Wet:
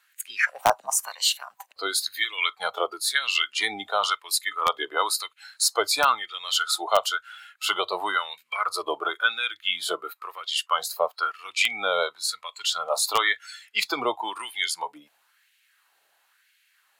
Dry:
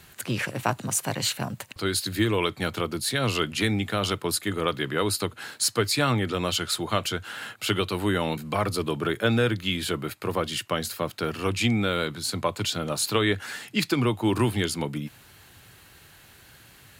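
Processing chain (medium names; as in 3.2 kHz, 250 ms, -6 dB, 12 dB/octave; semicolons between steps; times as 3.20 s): spectral noise reduction 17 dB; LFO high-pass sine 0.98 Hz 630–2300 Hz; in parallel at -6 dB: integer overflow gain 9.5 dB; on the sum: trim -1.5 dB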